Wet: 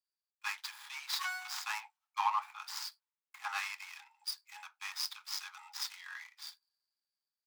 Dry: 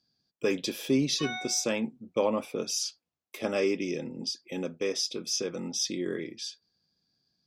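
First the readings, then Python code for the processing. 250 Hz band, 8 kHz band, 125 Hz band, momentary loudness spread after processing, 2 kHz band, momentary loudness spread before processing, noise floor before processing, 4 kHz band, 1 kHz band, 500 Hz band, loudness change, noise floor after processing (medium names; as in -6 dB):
under -40 dB, -13.0 dB, under -40 dB, 12 LU, -1.5 dB, 8 LU, under -85 dBFS, -7.0 dB, +3.5 dB, under -35 dB, -9.0 dB, under -85 dBFS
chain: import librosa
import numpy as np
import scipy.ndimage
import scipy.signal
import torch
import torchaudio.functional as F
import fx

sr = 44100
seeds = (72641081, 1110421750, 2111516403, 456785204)

y = scipy.signal.medfilt(x, 15)
y = scipy.signal.sosfilt(scipy.signal.butter(16, 820.0, 'highpass', fs=sr, output='sos'), y)
y = fx.band_widen(y, sr, depth_pct=40)
y = y * librosa.db_to_amplitude(3.0)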